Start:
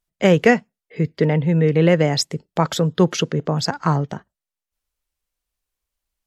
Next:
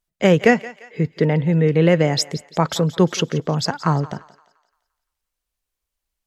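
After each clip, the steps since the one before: thinning echo 0.173 s, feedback 45%, high-pass 620 Hz, level -16.5 dB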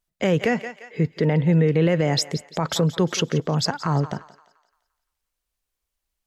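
limiter -11 dBFS, peak gain reduction 10 dB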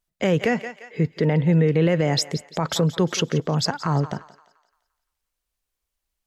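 nothing audible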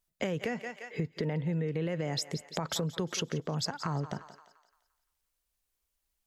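high shelf 7000 Hz +5 dB; compressor 5:1, threshold -28 dBFS, peak gain reduction 12 dB; gain -2.5 dB

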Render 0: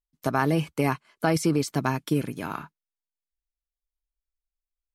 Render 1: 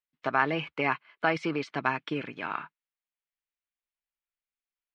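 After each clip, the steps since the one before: LPF 2700 Hz 24 dB/oct; tilt +4.5 dB/oct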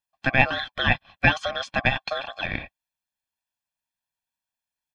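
harmonic-percussive split percussive +9 dB; ring modulator 930 Hz; comb 1.2 ms, depth 78%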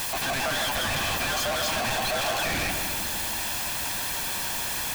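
infinite clipping; darkening echo 0.156 s, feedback 69%, low-pass 2300 Hz, level -5 dB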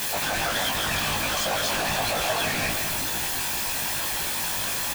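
whisperiser; in parallel at -7 dB: wrapped overs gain 26 dB; on the sum: doubler 19 ms -3 dB; gain -1 dB

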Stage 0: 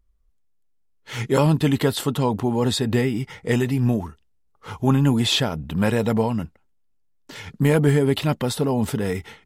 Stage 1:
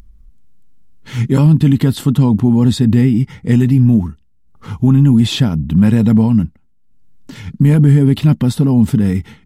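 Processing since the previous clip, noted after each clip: resonant low shelf 330 Hz +11.5 dB, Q 1.5; upward compressor, threshold -30 dBFS; limiter -3 dBFS, peak gain reduction 5 dB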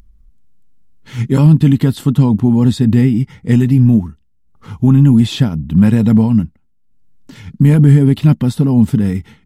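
upward expander 1.5:1, over -18 dBFS; gain +2 dB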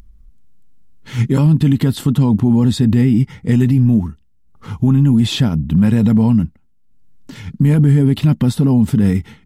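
limiter -8 dBFS, peak gain reduction 7 dB; gain +2.5 dB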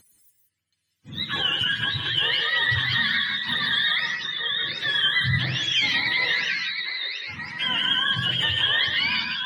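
spectrum mirrored in octaves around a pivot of 670 Hz; delay with a stepping band-pass 0.725 s, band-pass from 3400 Hz, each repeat -1.4 oct, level -1 dB; non-linear reverb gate 0.2 s rising, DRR 3.5 dB; gain -8.5 dB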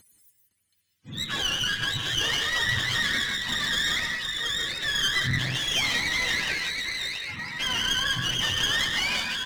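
one-sided clip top -32 dBFS; echo 0.51 s -14.5 dB

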